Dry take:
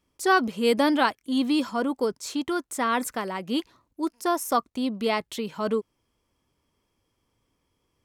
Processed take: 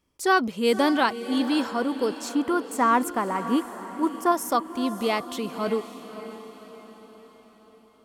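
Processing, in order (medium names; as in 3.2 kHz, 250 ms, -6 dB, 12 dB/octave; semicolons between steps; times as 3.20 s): 2.29–4.32 s: ten-band graphic EQ 250 Hz +4 dB, 1 kHz +7 dB, 4 kHz -10 dB; on a send: echo that smears into a reverb 578 ms, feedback 49%, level -12 dB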